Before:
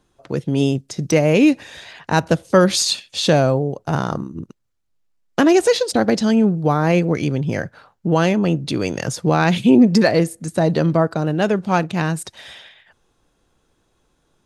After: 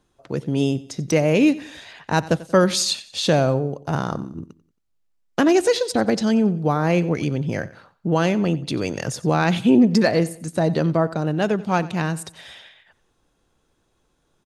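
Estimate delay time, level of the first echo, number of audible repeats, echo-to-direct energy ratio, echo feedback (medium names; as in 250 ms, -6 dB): 91 ms, -18.5 dB, 2, -18.0 dB, 38%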